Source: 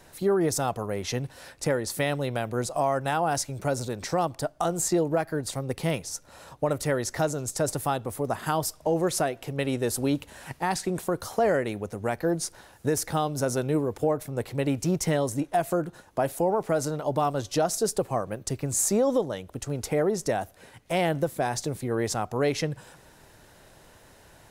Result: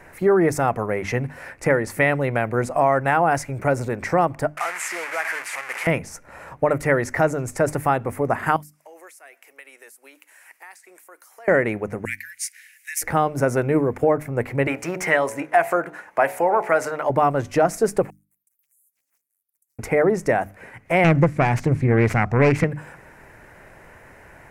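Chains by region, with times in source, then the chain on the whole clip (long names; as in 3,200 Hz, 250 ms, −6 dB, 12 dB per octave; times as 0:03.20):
0:04.57–0:05.87: linear delta modulator 64 kbit/s, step −25 dBFS + high-pass filter 1,200 Hz
0:08.56–0:11.48: high-pass filter 290 Hz 24 dB per octave + first difference + downward compressor 3 to 1, threshold −48 dBFS
0:12.05–0:13.02: Butterworth high-pass 1,900 Hz 48 dB per octave + spectral tilt +2.5 dB per octave
0:14.67–0:17.10: spectral tilt +3.5 dB per octave + hum removal 61.52 Hz, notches 16 + mid-hump overdrive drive 10 dB, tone 1,600 Hz, clips at −6 dBFS
0:18.10–0:19.79: inverse Chebyshev high-pass filter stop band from 2,800 Hz, stop band 80 dB + downward compressor, threshold −57 dBFS + highs frequency-modulated by the lows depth 0.72 ms
0:21.04–0:22.64: phase distortion by the signal itself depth 0.26 ms + low-pass filter 5,600 Hz + bass and treble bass +10 dB, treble +8 dB
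whole clip: high shelf with overshoot 2,800 Hz −9 dB, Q 3; mains-hum notches 50/100/150/200/250/300 Hz; level +6.5 dB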